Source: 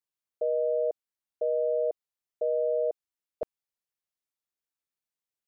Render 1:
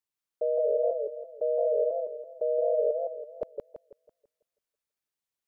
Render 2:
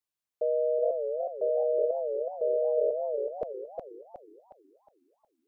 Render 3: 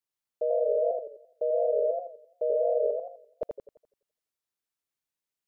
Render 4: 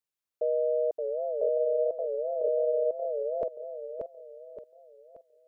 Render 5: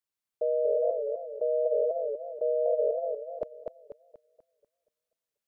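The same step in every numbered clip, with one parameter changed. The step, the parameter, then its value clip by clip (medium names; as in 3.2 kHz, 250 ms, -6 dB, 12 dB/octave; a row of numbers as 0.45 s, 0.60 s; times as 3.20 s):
modulated delay, time: 165 ms, 368 ms, 85 ms, 577 ms, 242 ms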